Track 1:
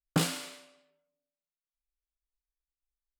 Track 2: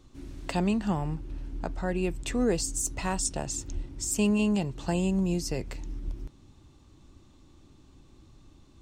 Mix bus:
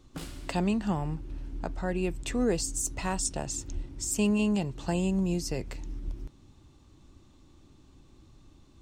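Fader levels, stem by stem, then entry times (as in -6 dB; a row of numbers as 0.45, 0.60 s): -14.0, -1.0 dB; 0.00, 0.00 s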